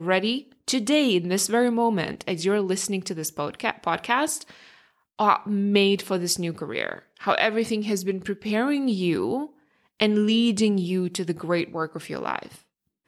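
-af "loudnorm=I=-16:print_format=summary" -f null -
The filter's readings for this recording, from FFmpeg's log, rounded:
Input Integrated:    -24.6 LUFS
Input True Peak:      -5.8 dBTP
Input LRA:             2.0 LU
Input Threshold:     -35.0 LUFS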